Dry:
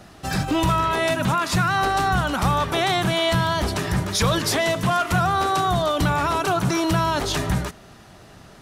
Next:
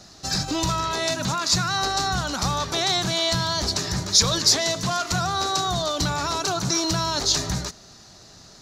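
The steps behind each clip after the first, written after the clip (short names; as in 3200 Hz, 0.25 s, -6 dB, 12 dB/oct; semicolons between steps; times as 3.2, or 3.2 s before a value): band shelf 5300 Hz +14.5 dB 1.1 oct; gain -5 dB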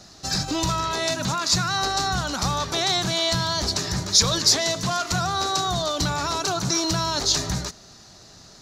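nothing audible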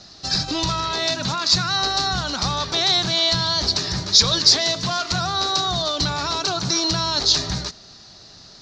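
synth low-pass 4600 Hz, resonance Q 2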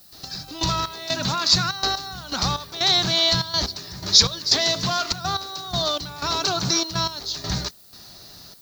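step gate ".x...xx..xxxxx" 123 bpm -12 dB; added noise violet -51 dBFS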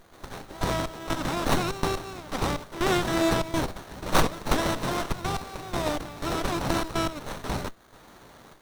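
spectral limiter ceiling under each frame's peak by 13 dB; running maximum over 17 samples; gain -2 dB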